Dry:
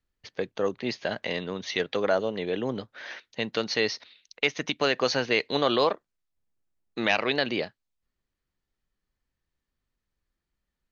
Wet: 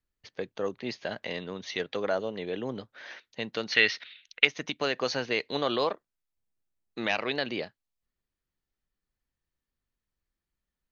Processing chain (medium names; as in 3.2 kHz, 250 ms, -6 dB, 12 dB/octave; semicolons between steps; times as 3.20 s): 3.72–4.45 s: high-order bell 2.2 kHz +12 dB; trim -4.5 dB